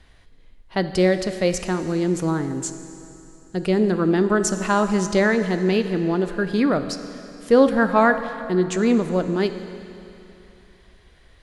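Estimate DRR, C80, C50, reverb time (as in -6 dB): 9.0 dB, 11.0 dB, 10.0 dB, 2.9 s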